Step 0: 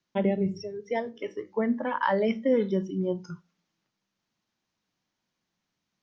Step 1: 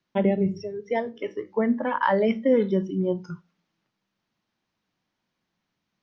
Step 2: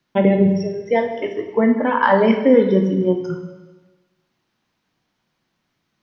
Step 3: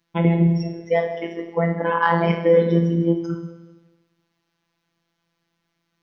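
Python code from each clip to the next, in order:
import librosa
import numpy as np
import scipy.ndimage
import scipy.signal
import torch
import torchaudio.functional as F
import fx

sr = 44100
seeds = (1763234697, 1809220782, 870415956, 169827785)

y1 = scipy.signal.sosfilt(scipy.signal.bessel(2, 4000.0, 'lowpass', norm='mag', fs=sr, output='sos'), x)
y1 = F.gain(torch.from_numpy(y1), 3.5).numpy()
y2 = fx.rev_plate(y1, sr, seeds[0], rt60_s=1.2, hf_ratio=1.0, predelay_ms=0, drr_db=4.5)
y2 = F.gain(torch.from_numpy(y2), 6.5).numpy()
y3 = fx.robotise(y2, sr, hz=168.0)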